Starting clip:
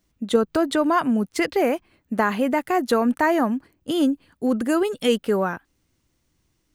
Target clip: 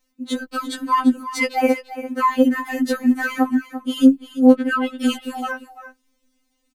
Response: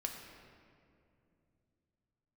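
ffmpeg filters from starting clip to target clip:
-filter_complex "[0:a]asettb=1/sr,asplit=3[s0][s1][s2];[s0]atrim=end=4.554[s3];[s1]atrim=start=4.55:end=5.01,asetpts=PTS-STARTPTS,afade=t=in:d=0.004:c=qsin,afade=t=out:st=0.456:d=0.004:c=qsin,highshelf=f=4600:t=q:w=1.5:g=-12[s4];[s2]atrim=start=5.006[s5];[s3][s4]acrossfade=d=0.004:c1=hsin:c2=qsin[s6];[s6][s5]acrossfade=d=0.004:c1=qsin:c2=hsin,aecho=1:1:342:0.224,afftfilt=real='re*3.46*eq(mod(b,12),0)':imag='im*3.46*eq(mod(b,12),0)':win_size=2048:overlap=0.75,volume=1.5"

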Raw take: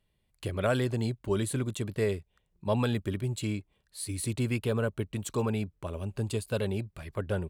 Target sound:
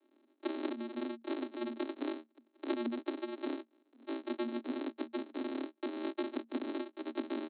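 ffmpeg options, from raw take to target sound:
-af "highpass=f=66:w=0.5412,highpass=f=66:w=1.3066,acompressor=threshold=0.00708:ratio=5,aresample=8000,acrusher=samples=32:mix=1:aa=0.000001,aresample=44100,afreqshift=230,volume=2.11"

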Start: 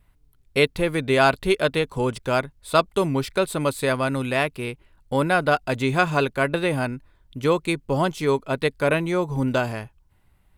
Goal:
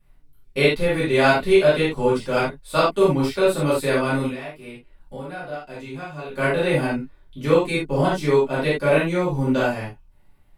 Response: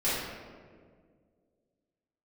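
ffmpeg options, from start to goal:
-filter_complex "[0:a]asettb=1/sr,asplit=3[s0][s1][s2];[s0]atrim=end=4.264[s3];[s1]atrim=start=4.26:end=6.29,asetpts=PTS-STARTPTS,afade=t=in:d=0.004:c=qsin,afade=t=out:st=2.026:d=0.004:c=qsin,acompressor=threshold=0.00891:ratio=2.5[s4];[s2]atrim=start=6.286[s5];[s3][s4]acrossfade=d=0.004:c1=hsin:c2=qsin[s6];[s6][s5]acrossfade=d=0.004:c1=qsin:c2=hsin[s7];[1:a]atrim=start_sample=2205,atrim=end_sample=4410[s8];[s7][s8]afir=irnorm=-1:irlink=0,volume=0.447"

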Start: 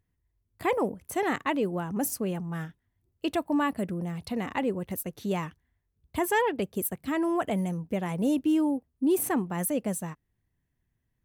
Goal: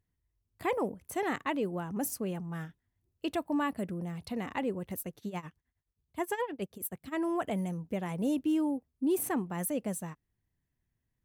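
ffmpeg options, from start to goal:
-filter_complex "[0:a]asplit=3[s0][s1][s2];[s0]afade=t=out:st=5.11:d=0.02[s3];[s1]tremolo=f=9.5:d=0.88,afade=t=in:st=5.11:d=0.02,afade=t=out:st=7.12:d=0.02[s4];[s2]afade=t=in:st=7.12:d=0.02[s5];[s3][s4][s5]amix=inputs=3:normalize=0,volume=0.596"

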